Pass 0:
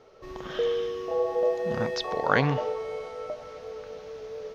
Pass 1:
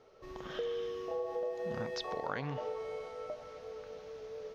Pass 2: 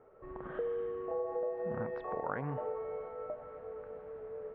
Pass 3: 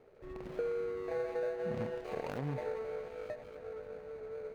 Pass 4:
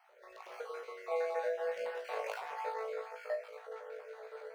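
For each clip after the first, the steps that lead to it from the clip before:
downward compressor 6 to 1, threshold −27 dBFS, peak gain reduction 10.5 dB; level −6.5 dB
low-pass filter 1,700 Hz 24 dB per octave; level +1 dB
running median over 41 samples; level +1.5 dB
time-frequency cells dropped at random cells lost 31%; inverse Chebyshev high-pass filter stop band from 290 Hz, stop band 40 dB; flutter between parallel walls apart 3.1 metres, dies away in 0.23 s; level +4.5 dB

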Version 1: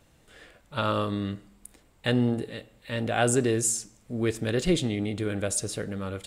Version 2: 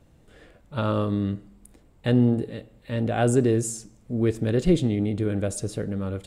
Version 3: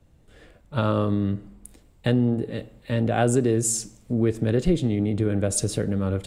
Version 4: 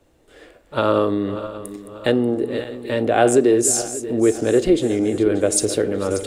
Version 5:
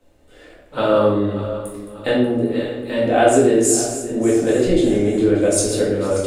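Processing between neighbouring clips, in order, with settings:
tilt shelving filter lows +6 dB, about 760 Hz
downward compressor 3 to 1, threshold −30 dBFS, peak gain reduction 12 dB; multiband upward and downward expander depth 40%; level +8.5 dB
feedback delay that plays each chunk backwards 294 ms, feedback 63%, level −12.5 dB; low shelf with overshoot 240 Hz −11 dB, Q 1.5; level +6 dB
rectangular room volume 210 cubic metres, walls mixed, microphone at 2 metres; level −5 dB

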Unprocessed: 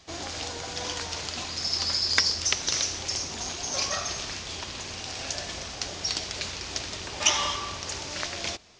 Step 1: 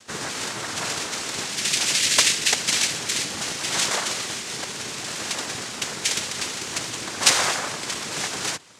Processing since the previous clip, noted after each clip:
cochlear-implant simulation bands 3
level +5.5 dB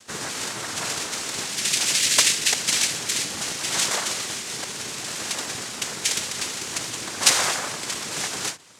high-shelf EQ 10,000 Hz +8.5 dB
every ending faded ahead of time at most 230 dB per second
level −1.5 dB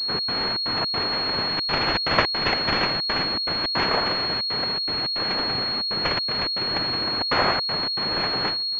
each half-wave held at its own peak
gate pattern "xx.xxx.xx.xxxxx" 160 BPM −60 dB
switching amplifier with a slow clock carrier 4,300 Hz

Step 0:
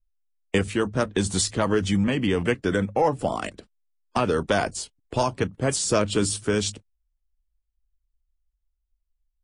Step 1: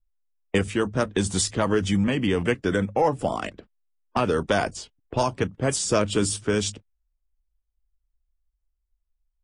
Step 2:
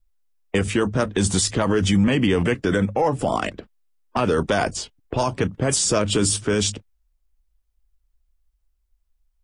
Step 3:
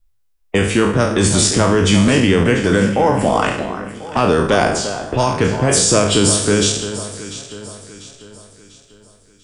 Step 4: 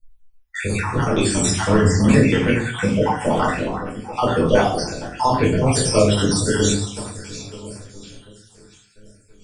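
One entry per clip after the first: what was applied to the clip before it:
notch filter 4,200 Hz, Q 13; low-pass that shuts in the quiet parts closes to 1,400 Hz, open at −20 dBFS
brickwall limiter −18 dBFS, peak gain reduction 8 dB; level +7.5 dB
peak hold with a decay on every bin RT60 0.65 s; delay that swaps between a low-pass and a high-pass 347 ms, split 1,600 Hz, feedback 65%, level −10 dB; level +4 dB
time-frequency cells dropped at random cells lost 57%; rectangular room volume 320 cubic metres, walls furnished, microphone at 4.6 metres; level −8.5 dB

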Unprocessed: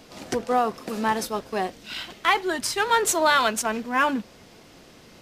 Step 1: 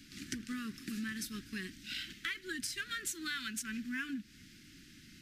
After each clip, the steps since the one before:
elliptic band-stop filter 300–1,600 Hz, stop band 50 dB
downward compressor 6 to 1, threshold −32 dBFS, peak gain reduction 12 dB
level −4.5 dB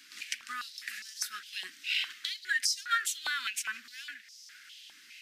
high-pass on a step sequencer 4.9 Hz 840–5,400 Hz
level +3.5 dB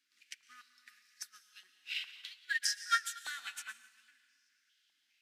dense smooth reverb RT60 1.8 s, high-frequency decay 0.95×, pre-delay 100 ms, DRR 3.5 dB
expander for the loud parts 2.5 to 1, over −41 dBFS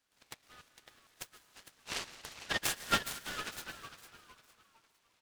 echo with shifted repeats 456 ms, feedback 36%, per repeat −120 Hz, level −12 dB
short delay modulated by noise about 1,400 Hz, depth 0.084 ms

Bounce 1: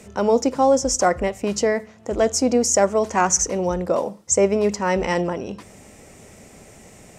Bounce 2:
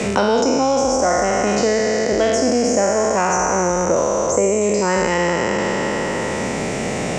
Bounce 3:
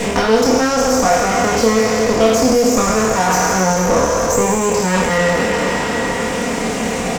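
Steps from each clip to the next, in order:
peak hold with a decay on every bin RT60 2.73 s; high-frequency loss of the air 97 metres; multiband upward and downward compressor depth 100%; level −2 dB
lower of the sound and its delayed copy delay 4.2 ms; double-tracking delay 27 ms −4.5 dB; level +3 dB

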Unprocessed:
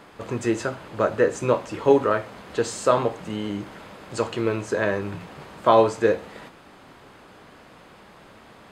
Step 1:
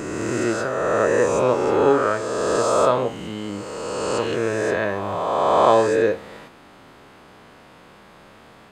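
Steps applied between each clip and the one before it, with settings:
peak hold with a rise ahead of every peak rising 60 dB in 2.55 s
level −2.5 dB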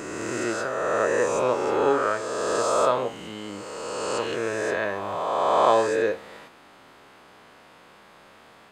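low-shelf EQ 310 Hz −9 dB
level −2 dB

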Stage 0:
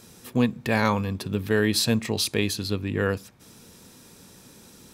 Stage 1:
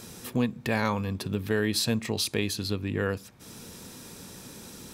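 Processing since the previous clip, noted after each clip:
downward compressor 1.5 to 1, threshold −46 dBFS, peak gain reduction 10.5 dB
level +5.5 dB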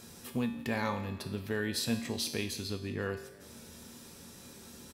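tuned comb filter 78 Hz, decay 0.74 s, harmonics odd, mix 80%
echo with shifted repeats 170 ms, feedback 55%, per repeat +43 Hz, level −19.5 dB
level +5 dB

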